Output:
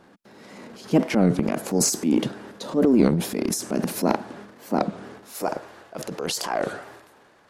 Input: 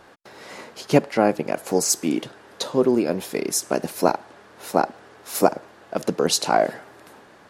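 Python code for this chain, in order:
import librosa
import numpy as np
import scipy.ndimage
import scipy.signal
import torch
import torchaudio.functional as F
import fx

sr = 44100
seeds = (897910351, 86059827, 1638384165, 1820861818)

y = fx.peak_eq(x, sr, hz=210.0, db=fx.steps((0.0, 14.0), (5.33, -3.0)), octaves=1.3)
y = fx.transient(y, sr, attack_db=-3, sustain_db=11)
y = fx.record_warp(y, sr, rpm=33.33, depth_cents=250.0)
y = y * 10.0 ** (-7.5 / 20.0)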